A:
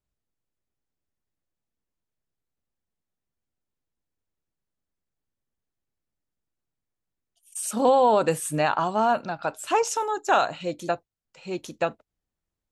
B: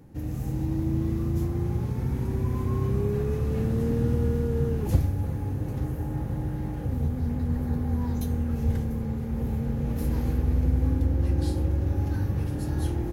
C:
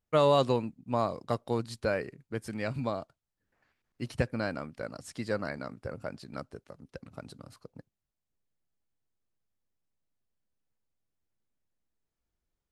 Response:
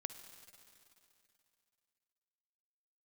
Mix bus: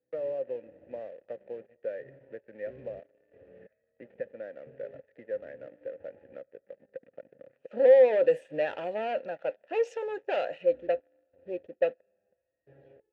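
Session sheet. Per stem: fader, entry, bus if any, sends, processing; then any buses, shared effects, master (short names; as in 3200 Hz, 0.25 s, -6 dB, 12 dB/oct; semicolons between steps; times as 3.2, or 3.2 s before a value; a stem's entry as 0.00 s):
+0.5 dB, 0.00 s, send -20.5 dB, low-pass opened by the level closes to 310 Hz, open at -20 dBFS
-4.5 dB, 0.00 s, no send, LPF 2900 Hz; stepped resonator 3 Hz 63–940 Hz; auto duck -12 dB, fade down 1.25 s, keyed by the first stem
-9.0 dB, 0.00 s, send -4.5 dB, steep low-pass 2300 Hz 48 dB/oct; three-band squash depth 70%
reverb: on, RT60 2.8 s, pre-delay 48 ms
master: high shelf 2600 Hz -8.5 dB; sample leveller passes 2; vowel filter e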